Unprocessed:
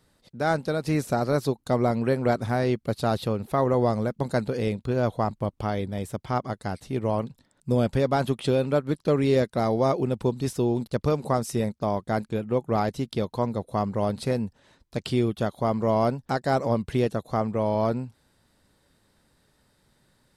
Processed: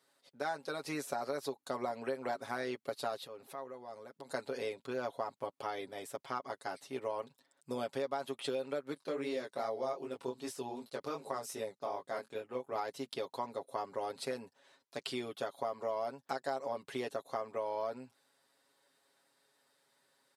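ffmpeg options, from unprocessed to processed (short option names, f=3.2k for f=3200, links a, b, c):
-filter_complex "[0:a]asettb=1/sr,asplit=3[a][b][c];[a]atrim=end=3.164[d];[b]atrim=start=3.16:end=4.29,asetpts=PTS-STARTPTS,afade=t=in:d=0.004:c=qsin,afade=t=out:st=1.126:d=0.004:c=qsin,acompressor=threshold=-34dB:ratio=10:attack=3.2:release=140:knee=1:detection=peak[e];[c]atrim=start=4.286[f];[d][e]acrossfade=d=0.004:c1=hsin:c2=qsin[g];[g][f]acrossfade=d=0.004:c1=qsin:c2=hsin,asettb=1/sr,asplit=3[h][i][j];[h]atrim=end=8.944[k];[i]atrim=start=8.94:end=12.76,asetpts=PTS-STARTPTS,afade=t=in:d=0.004:c=qsin,afade=t=out:st=3.816:d=0.004:c=qsin,flanger=delay=18:depth=6:speed=2.6[l];[j]atrim=start=12.756[m];[k][l]acrossfade=d=0.004:c1=hsin:c2=qsin[n];[n][m]acrossfade=d=0.004:c1=qsin:c2=hsin,highpass=460,aecho=1:1:7.3:0.76,acompressor=threshold=-26dB:ratio=6,volume=-7dB"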